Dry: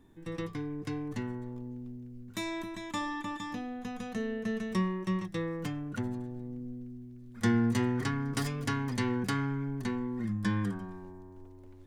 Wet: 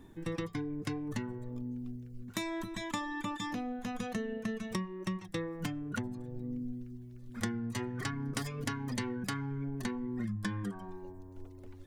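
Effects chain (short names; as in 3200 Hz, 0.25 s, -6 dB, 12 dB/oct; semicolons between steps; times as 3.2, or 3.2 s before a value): reverb removal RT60 0.92 s; compressor 10:1, threshold -39 dBFS, peak gain reduction 17 dB; 3.49–3.95 hard clip -38 dBFS, distortion -30 dB; gain +6.5 dB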